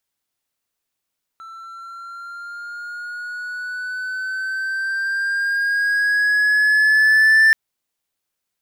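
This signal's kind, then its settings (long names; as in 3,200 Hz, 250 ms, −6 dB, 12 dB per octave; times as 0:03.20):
pitch glide with a swell triangle, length 6.13 s, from 1,330 Hz, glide +5 semitones, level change +26 dB, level −7 dB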